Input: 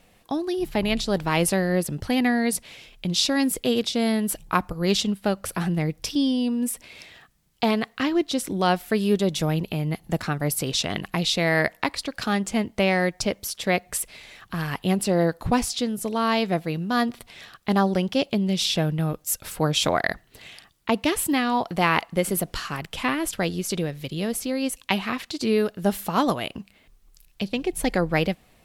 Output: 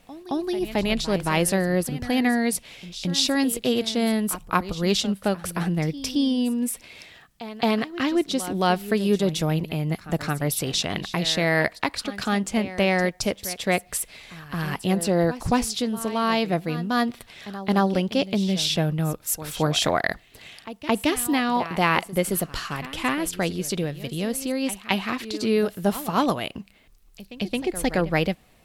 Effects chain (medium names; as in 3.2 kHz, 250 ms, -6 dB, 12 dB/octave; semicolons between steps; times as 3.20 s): pre-echo 220 ms -14.5 dB